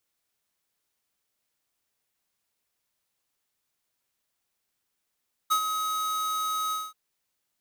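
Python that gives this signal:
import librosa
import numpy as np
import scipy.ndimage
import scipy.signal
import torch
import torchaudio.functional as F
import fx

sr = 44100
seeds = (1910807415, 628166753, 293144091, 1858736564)

y = fx.adsr_tone(sr, wave='square', hz=1270.0, attack_ms=19.0, decay_ms=81.0, sustain_db=-7.5, held_s=1.22, release_ms=211.0, level_db=-21.5)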